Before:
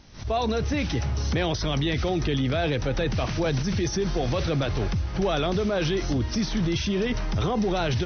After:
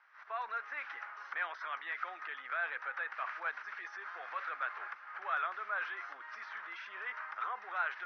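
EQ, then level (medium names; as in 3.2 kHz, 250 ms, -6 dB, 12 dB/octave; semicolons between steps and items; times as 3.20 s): ladder high-pass 1.1 kHz, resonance 45%; distance through air 250 m; resonant high shelf 2.5 kHz -11.5 dB, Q 1.5; +3.0 dB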